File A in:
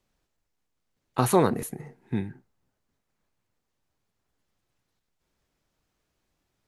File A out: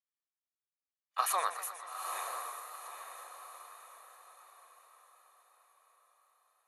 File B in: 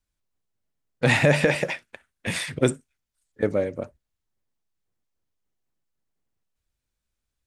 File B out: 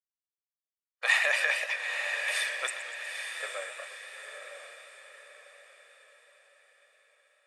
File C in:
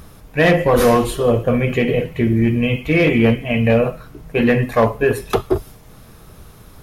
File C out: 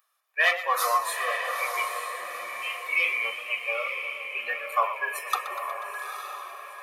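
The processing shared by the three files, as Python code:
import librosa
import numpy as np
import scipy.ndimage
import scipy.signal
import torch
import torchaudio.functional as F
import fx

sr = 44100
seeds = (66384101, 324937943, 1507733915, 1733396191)

p1 = scipy.signal.sosfilt(scipy.signal.butter(4, 920.0, 'highpass', fs=sr, output='sos'), x)
p2 = fx.peak_eq(p1, sr, hz=5800.0, db=-2.5, octaves=1.8)
p3 = p2 + 0.51 * np.pad(p2, (int(1.7 * sr / 1000.0), 0))[:len(p2)]
p4 = fx.noise_reduce_blind(p3, sr, reduce_db=21)
p5 = p4 + fx.echo_diffused(p4, sr, ms=893, feedback_pct=43, wet_db=-6.0, dry=0)
p6 = fx.echo_warbled(p5, sr, ms=121, feedback_pct=73, rate_hz=2.8, cents=116, wet_db=-13.5)
y = p6 * 10.0 ** (-2.5 / 20.0)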